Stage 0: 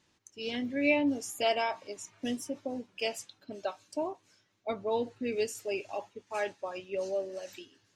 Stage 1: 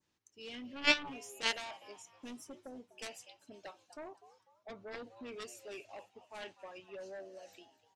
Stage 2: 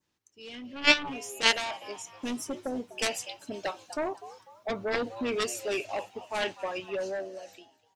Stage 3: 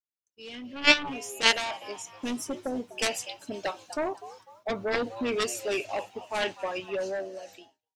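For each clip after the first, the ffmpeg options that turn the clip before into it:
ffmpeg -i in.wav -filter_complex "[0:a]asplit=4[link_01][link_02][link_03][link_04];[link_02]adelay=248,afreqshift=120,volume=-18dB[link_05];[link_03]adelay=496,afreqshift=240,volume=-26.4dB[link_06];[link_04]adelay=744,afreqshift=360,volume=-34.8dB[link_07];[link_01][link_05][link_06][link_07]amix=inputs=4:normalize=0,aeval=exprs='0.188*(cos(1*acos(clip(val(0)/0.188,-1,1)))-cos(1*PI/2))+0.075*(cos(3*acos(clip(val(0)/0.188,-1,1)))-cos(3*PI/2))+0.00266*(cos(7*acos(clip(val(0)/0.188,-1,1)))-cos(7*PI/2))':channel_layout=same,adynamicequalizer=threshold=0.00158:dfrequency=2800:dqfactor=1.2:tfrequency=2800:tqfactor=1.2:attack=5:release=100:ratio=0.375:range=3:mode=boostabove:tftype=bell" out.wav
ffmpeg -i in.wav -af "dynaudnorm=framelen=170:gausssize=11:maxgain=14dB,volume=2dB" out.wav
ffmpeg -i in.wav -af "agate=range=-33dB:threshold=-52dB:ratio=3:detection=peak,volume=1.5dB" out.wav

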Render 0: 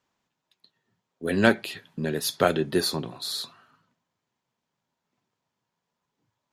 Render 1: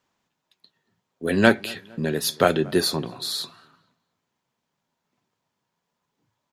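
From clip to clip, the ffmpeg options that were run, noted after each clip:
ffmpeg -i in.wav -filter_complex "[0:a]bandreject=frequency=60:width_type=h:width=6,bandreject=frequency=120:width_type=h:width=6,asplit=2[link_01][link_02];[link_02]adelay=230,lowpass=frequency=2200:poles=1,volume=-24dB,asplit=2[link_03][link_04];[link_04]adelay=230,lowpass=frequency=2200:poles=1,volume=0.48,asplit=2[link_05][link_06];[link_06]adelay=230,lowpass=frequency=2200:poles=1,volume=0.48[link_07];[link_01][link_03][link_05][link_07]amix=inputs=4:normalize=0,volume=3dB" out.wav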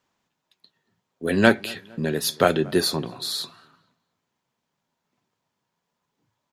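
ffmpeg -i in.wav -af anull out.wav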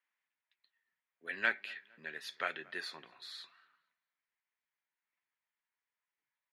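ffmpeg -i in.wav -af "bandpass=frequency=2000:width_type=q:width=3:csg=0,volume=-5dB" out.wav

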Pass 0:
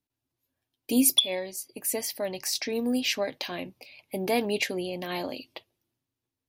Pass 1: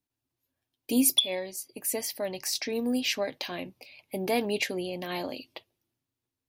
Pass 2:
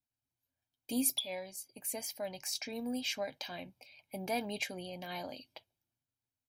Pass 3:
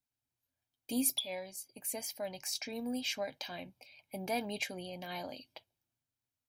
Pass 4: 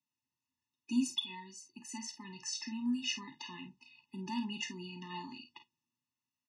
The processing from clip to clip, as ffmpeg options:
ffmpeg -i in.wav -af "acontrast=48,volume=-7dB" out.wav
ffmpeg -i in.wav -af "aecho=1:1:1.3:0.52,volume=-8.5dB" out.wav
ffmpeg -i in.wav -af "asoftclip=type=hard:threshold=-20.5dB" out.wav
ffmpeg -i in.wav -af "highpass=frequency=100:width=0.5412,highpass=frequency=100:width=1.3066,equalizer=frequency=110:width_type=q:width=4:gain=-10,equalizer=frequency=230:width_type=q:width=4:gain=5,equalizer=frequency=440:width_type=q:width=4:gain=-9,equalizer=frequency=930:width_type=q:width=4:gain=5,equalizer=frequency=2700:width_type=q:width=4:gain=7,equalizer=frequency=5900:width_type=q:width=4:gain=5,lowpass=frequency=6800:width=0.5412,lowpass=frequency=6800:width=1.3066,aecho=1:1:37|50:0.251|0.282,afftfilt=real='re*eq(mod(floor(b*sr/1024/420),2),0)':imag='im*eq(mod(floor(b*sr/1024/420),2),0)':win_size=1024:overlap=0.75" out.wav

